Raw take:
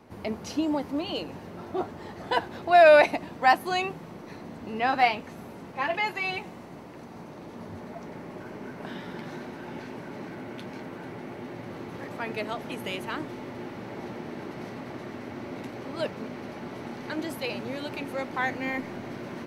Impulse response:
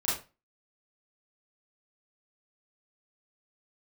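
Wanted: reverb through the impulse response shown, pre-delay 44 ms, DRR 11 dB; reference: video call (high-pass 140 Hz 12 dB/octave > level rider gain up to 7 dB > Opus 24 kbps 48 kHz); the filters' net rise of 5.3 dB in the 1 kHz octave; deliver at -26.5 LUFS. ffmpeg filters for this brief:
-filter_complex "[0:a]equalizer=f=1000:t=o:g=8,asplit=2[s0][s1];[1:a]atrim=start_sample=2205,adelay=44[s2];[s1][s2]afir=irnorm=-1:irlink=0,volume=0.112[s3];[s0][s3]amix=inputs=2:normalize=0,highpass=140,dynaudnorm=m=2.24,volume=0.631" -ar 48000 -c:a libopus -b:a 24k

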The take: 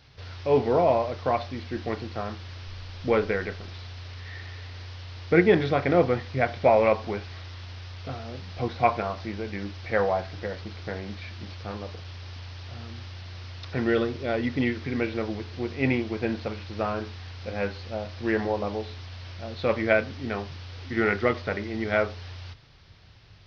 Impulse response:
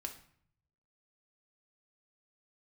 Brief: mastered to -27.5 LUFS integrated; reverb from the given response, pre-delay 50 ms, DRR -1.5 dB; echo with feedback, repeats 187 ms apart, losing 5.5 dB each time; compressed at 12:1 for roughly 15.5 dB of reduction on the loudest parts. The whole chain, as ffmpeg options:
-filter_complex "[0:a]acompressor=threshold=0.0316:ratio=12,aecho=1:1:187|374|561|748|935|1122|1309:0.531|0.281|0.149|0.079|0.0419|0.0222|0.0118,asplit=2[s0][s1];[1:a]atrim=start_sample=2205,adelay=50[s2];[s1][s2]afir=irnorm=-1:irlink=0,volume=1.5[s3];[s0][s3]amix=inputs=2:normalize=0,volume=1.68"

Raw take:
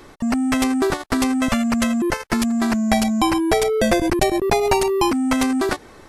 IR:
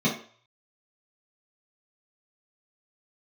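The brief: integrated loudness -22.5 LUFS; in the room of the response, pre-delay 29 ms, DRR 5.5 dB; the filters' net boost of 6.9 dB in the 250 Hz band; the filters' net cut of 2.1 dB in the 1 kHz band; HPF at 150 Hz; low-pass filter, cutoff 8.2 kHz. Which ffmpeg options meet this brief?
-filter_complex "[0:a]highpass=150,lowpass=8200,equalizer=f=250:t=o:g=8.5,equalizer=f=1000:t=o:g=-3.5,asplit=2[s0][s1];[1:a]atrim=start_sample=2205,adelay=29[s2];[s1][s2]afir=irnorm=-1:irlink=0,volume=0.126[s3];[s0][s3]amix=inputs=2:normalize=0,volume=0.158"

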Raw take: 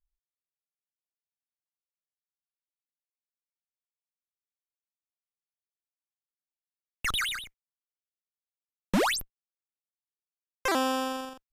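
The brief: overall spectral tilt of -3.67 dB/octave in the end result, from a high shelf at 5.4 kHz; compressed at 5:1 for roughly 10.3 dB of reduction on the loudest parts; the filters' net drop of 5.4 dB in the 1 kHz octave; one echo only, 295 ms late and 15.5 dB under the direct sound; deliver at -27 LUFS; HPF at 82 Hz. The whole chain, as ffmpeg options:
-af "highpass=82,equalizer=f=1000:t=o:g=-7,highshelf=f=5400:g=-5,acompressor=threshold=0.02:ratio=5,aecho=1:1:295:0.168,volume=3.55"

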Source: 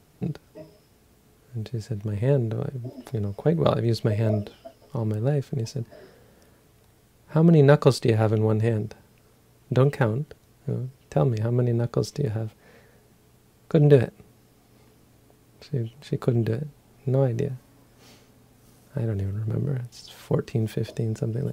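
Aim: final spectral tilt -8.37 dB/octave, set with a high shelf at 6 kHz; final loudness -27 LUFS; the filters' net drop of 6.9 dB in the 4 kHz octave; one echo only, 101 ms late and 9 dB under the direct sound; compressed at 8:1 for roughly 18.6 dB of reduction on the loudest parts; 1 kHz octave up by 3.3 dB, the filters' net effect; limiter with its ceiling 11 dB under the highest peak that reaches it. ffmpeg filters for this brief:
-af "equalizer=f=1000:t=o:g=5,equalizer=f=4000:t=o:g=-7.5,highshelf=f=6000:g=-3,acompressor=threshold=0.0355:ratio=8,alimiter=level_in=1.33:limit=0.0631:level=0:latency=1,volume=0.75,aecho=1:1:101:0.355,volume=3.35"

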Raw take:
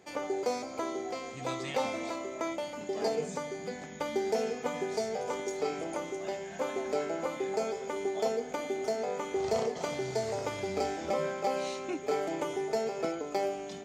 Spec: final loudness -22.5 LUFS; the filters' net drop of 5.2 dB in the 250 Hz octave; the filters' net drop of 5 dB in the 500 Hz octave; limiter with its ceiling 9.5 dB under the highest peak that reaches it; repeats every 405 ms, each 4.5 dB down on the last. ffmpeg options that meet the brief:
-af "equalizer=f=250:t=o:g=-5,equalizer=f=500:t=o:g=-5,alimiter=level_in=2.24:limit=0.0631:level=0:latency=1,volume=0.447,aecho=1:1:405|810|1215|1620|2025|2430|2835|3240|3645:0.596|0.357|0.214|0.129|0.0772|0.0463|0.0278|0.0167|0.01,volume=6.31"

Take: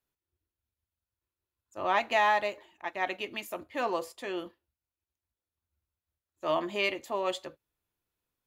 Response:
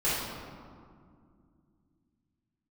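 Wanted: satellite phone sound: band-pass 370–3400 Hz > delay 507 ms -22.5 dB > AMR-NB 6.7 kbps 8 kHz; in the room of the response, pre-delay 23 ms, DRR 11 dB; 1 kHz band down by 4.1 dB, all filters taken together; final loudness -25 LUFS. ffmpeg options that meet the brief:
-filter_complex "[0:a]equalizer=f=1000:t=o:g=-5,asplit=2[s0][s1];[1:a]atrim=start_sample=2205,adelay=23[s2];[s1][s2]afir=irnorm=-1:irlink=0,volume=0.075[s3];[s0][s3]amix=inputs=2:normalize=0,highpass=370,lowpass=3400,aecho=1:1:507:0.075,volume=3.16" -ar 8000 -c:a libopencore_amrnb -b:a 6700

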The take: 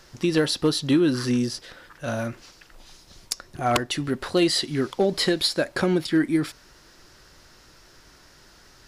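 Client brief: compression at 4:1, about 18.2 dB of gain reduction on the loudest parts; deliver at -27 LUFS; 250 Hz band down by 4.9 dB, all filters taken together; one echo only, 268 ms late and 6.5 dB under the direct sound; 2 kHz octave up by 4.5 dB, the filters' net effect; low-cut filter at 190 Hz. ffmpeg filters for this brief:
-af "highpass=190,equalizer=f=250:t=o:g=-6,equalizer=f=2000:t=o:g=6,acompressor=threshold=0.01:ratio=4,aecho=1:1:268:0.473,volume=5.01"

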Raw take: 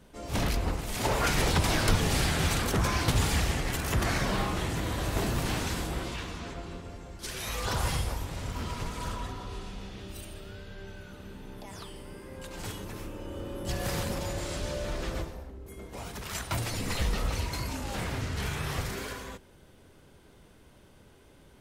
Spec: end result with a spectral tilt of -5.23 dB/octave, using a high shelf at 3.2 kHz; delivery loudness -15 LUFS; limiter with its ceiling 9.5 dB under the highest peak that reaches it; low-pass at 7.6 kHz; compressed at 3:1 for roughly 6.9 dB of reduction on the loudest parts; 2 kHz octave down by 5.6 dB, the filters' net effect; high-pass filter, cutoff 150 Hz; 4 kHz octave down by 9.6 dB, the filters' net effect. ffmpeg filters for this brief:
-af "highpass=150,lowpass=7600,equalizer=f=2000:t=o:g=-4,highshelf=f=3200:g=-4,equalizer=f=4000:t=o:g=-8,acompressor=threshold=0.0178:ratio=3,volume=23.7,alimiter=limit=0.562:level=0:latency=1"

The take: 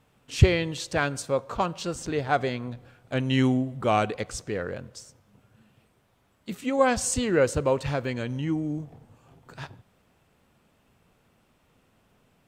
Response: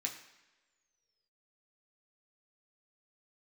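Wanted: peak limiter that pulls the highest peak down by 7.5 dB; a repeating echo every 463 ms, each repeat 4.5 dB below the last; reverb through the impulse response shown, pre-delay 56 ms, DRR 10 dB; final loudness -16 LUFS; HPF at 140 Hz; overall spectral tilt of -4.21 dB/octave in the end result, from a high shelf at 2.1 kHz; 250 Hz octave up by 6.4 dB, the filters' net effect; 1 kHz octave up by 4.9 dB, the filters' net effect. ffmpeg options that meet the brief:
-filter_complex "[0:a]highpass=140,equalizer=f=250:t=o:g=7.5,equalizer=f=1000:t=o:g=5,highshelf=f=2100:g=6,alimiter=limit=0.282:level=0:latency=1,aecho=1:1:463|926|1389|1852|2315|2778|3241|3704|4167:0.596|0.357|0.214|0.129|0.0772|0.0463|0.0278|0.0167|0.01,asplit=2[s0][s1];[1:a]atrim=start_sample=2205,adelay=56[s2];[s1][s2]afir=irnorm=-1:irlink=0,volume=0.299[s3];[s0][s3]amix=inputs=2:normalize=0,volume=2.24"

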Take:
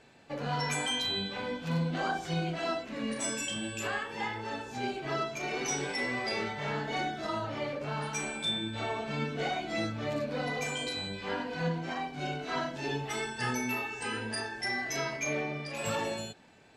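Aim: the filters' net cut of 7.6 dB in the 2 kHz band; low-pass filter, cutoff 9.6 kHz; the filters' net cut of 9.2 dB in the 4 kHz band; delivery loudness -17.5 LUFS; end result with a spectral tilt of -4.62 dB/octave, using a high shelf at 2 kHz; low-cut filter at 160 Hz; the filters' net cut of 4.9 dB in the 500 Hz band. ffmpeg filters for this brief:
-af "highpass=160,lowpass=9600,equalizer=f=500:t=o:g=-5.5,highshelf=f=2000:g=-5,equalizer=f=2000:t=o:g=-5,equalizer=f=4000:t=o:g=-5,volume=11.9"

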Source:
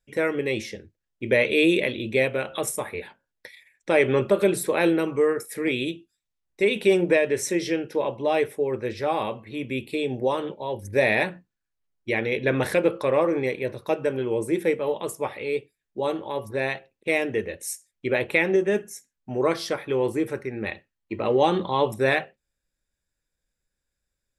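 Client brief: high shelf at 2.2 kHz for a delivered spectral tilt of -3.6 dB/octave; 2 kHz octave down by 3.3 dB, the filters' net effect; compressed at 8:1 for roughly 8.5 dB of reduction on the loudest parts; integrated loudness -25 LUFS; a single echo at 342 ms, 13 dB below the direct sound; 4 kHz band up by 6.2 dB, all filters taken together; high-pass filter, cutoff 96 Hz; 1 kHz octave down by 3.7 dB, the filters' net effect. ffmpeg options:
-af "highpass=96,equalizer=f=1000:t=o:g=-4.5,equalizer=f=2000:t=o:g=-8.5,highshelf=f=2200:g=6,equalizer=f=4000:t=o:g=5.5,acompressor=threshold=0.0631:ratio=8,aecho=1:1:342:0.224,volume=1.78"

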